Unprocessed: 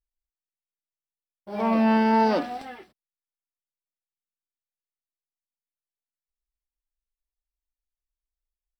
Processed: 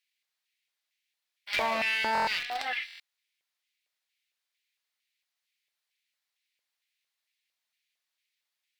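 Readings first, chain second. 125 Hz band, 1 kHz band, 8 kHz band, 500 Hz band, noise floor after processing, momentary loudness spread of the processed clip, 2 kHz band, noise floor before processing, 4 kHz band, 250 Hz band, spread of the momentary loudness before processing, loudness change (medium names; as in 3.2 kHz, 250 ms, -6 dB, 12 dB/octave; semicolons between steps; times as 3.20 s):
-18.5 dB, -6.0 dB, no reading, -10.5 dB, under -85 dBFS, 7 LU, +5.0 dB, under -85 dBFS, +8.0 dB, -23.0 dB, 16 LU, -7.0 dB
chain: in parallel at -5 dB: small samples zeroed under -27 dBFS; on the sum: ten-band graphic EQ 500 Hz -11 dB, 2 kHz +8 dB, 4 kHz +9 dB; LFO high-pass square 2.2 Hz 550–2300 Hz; Chebyshev shaper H 8 -30 dB, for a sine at -6 dBFS; compression 6:1, threshold -34 dBFS, peak gain reduction 19 dB; buffer glitch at 2.13/2.86 s, samples 1024, times 5; trim +6.5 dB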